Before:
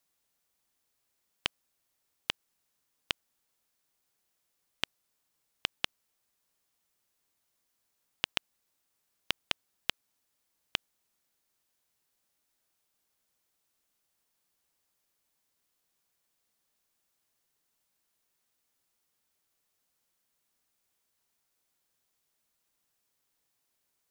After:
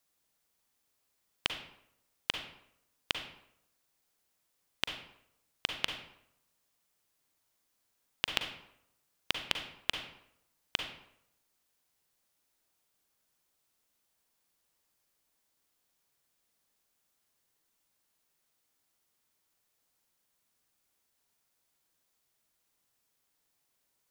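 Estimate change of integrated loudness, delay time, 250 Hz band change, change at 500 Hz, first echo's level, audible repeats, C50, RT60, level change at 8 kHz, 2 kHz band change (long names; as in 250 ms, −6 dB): +0.5 dB, no echo audible, +1.5 dB, +1.5 dB, no echo audible, no echo audible, 6.0 dB, 0.75 s, +1.0 dB, +1.0 dB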